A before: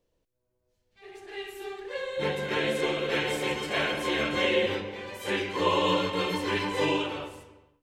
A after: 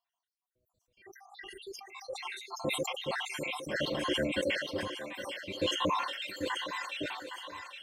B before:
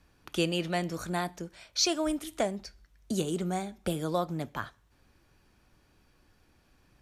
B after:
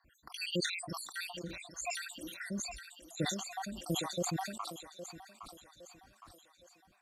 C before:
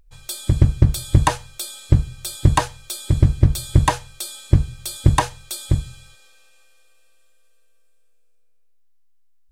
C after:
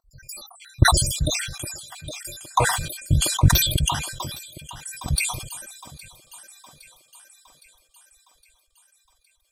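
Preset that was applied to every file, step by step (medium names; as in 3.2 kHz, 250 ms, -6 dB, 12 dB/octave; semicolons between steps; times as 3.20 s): random holes in the spectrogram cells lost 78%; comb of notches 430 Hz; on a send: thinning echo 813 ms, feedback 57%, high-pass 470 Hz, level -8 dB; on the sum: decay stretcher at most 56 dB/s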